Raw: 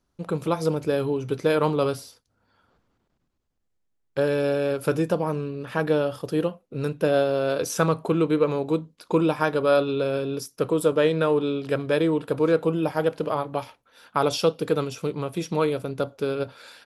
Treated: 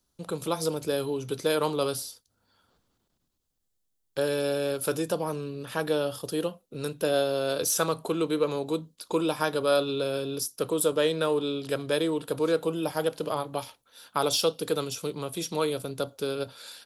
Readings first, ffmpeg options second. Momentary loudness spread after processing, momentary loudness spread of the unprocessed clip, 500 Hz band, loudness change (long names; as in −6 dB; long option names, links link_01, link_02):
9 LU, 9 LU, −4.5 dB, −4.0 dB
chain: -filter_complex "[0:a]acrossover=split=260[link_01][link_02];[link_01]alimiter=level_in=7.5dB:limit=-24dB:level=0:latency=1,volume=-7.5dB[link_03];[link_02]aexciter=amount=1.7:drive=8.9:freq=3200[link_04];[link_03][link_04]amix=inputs=2:normalize=0,volume=-4dB"